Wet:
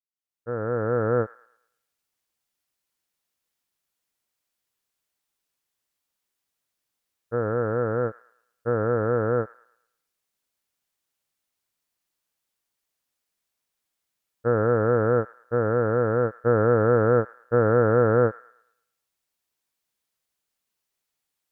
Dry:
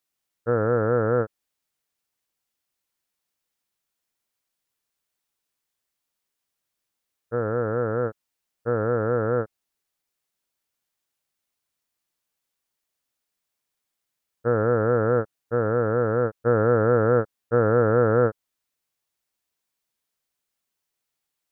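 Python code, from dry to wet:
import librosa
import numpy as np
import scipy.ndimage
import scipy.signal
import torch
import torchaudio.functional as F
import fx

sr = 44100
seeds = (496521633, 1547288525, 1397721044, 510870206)

y = fx.fade_in_head(x, sr, length_s=1.23)
y = fx.vibrato(y, sr, rate_hz=0.52, depth_cents=7.5)
y = fx.echo_wet_highpass(y, sr, ms=110, feedback_pct=38, hz=1700.0, wet_db=-11)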